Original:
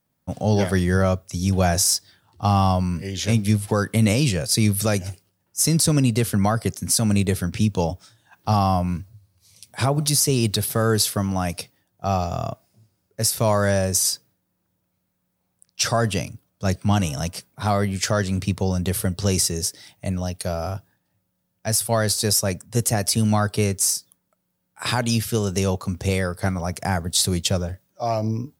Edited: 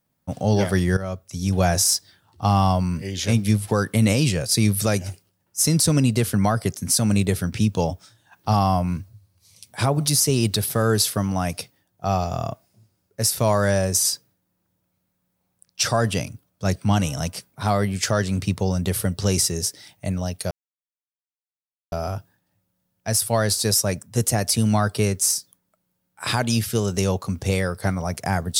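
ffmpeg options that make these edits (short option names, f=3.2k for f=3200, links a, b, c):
-filter_complex "[0:a]asplit=3[a][b][c];[a]atrim=end=0.97,asetpts=PTS-STARTPTS,afade=t=out:st=0.966:d=0.004:c=hsin:silence=0.211349[d];[b]atrim=start=0.97:end=20.51,asetpts=PTS-STARTPTS,afade=t=in:d=0.65:silence=0.211349,afade=t=out:st=19.536:d=0.004:c=hsin,apad=pad_dur=1.41[e];[c]atrim=start=20.51,asetpts=PTS-STARTPTS,afade=t=in:d=0.004:c=hsin[f];[d][e][f]concat=n=3:v=0:a=1"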